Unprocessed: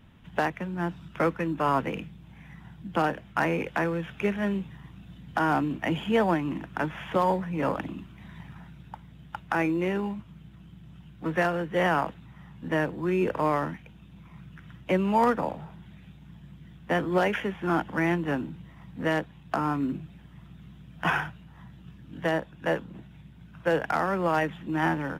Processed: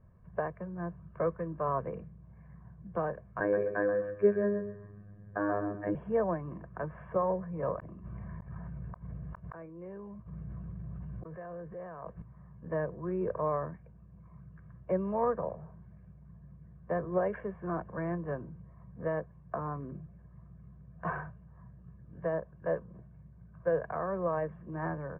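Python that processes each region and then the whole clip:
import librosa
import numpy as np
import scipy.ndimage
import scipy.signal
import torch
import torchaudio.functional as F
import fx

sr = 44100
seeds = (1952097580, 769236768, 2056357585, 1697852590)

y = fx.chain(x, sr, fx.small_body(hz=(340.0, 1600.0, 3800.0), ring_ms=20, db=14),
    fx.robotise(hz=102.0),
    fx.echo_feedback(ms=129, feedback_pct=26, wet_db=-8), at=(3.4, 5.95))
y = fx.chain(y, sr, fx.gate_flip(shuts_db=-32.0, range_db=-41),
    fx.env_flatten(amount_pct=100), at=(7.79, 12.22))
y = scipy.signal.sosfilt(scipy.signal.bessel(6, 990.0, 'lowpass', norm='mag', fs=sr, output='sos'), y)
y = y + 0.75 * np.pad(y, (int(1.8 * sr / 1000.0), 0))[:len(y)]
y = y * librosa.db_to_amplitude(-6.5)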